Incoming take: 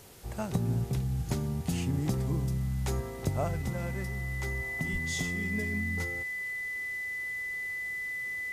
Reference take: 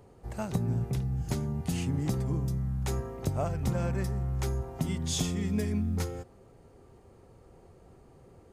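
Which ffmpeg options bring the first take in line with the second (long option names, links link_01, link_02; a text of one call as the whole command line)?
ffmpeg -i in.wav -filter_complex "[0:a]bandreject=frequency=2000:width=30,asplit=3[link_01][link_02][link_03];[link_01]afade=type=out:start_time=4.92:duration=0.02[link_04];[link_02]highpass=frequency=140:width=0.5412,highpass=frequency=140:width=1.3066,afade=type=in:start_time=4.92:duration=0.02,afade=type=out:start_time=5.04:duration=0.02[link_05];[link_03]afade=type=in:start_time=5.04:duration=0.02[link_06];[link_04][link_05][link_06]amix=inputs=3:normalize=0,afwtdn=0.002,asetnsamples=nb_out_samples=441:pad=0,asendcmd='3.62 volume volume 4.5dB',volume=0dB" out.wav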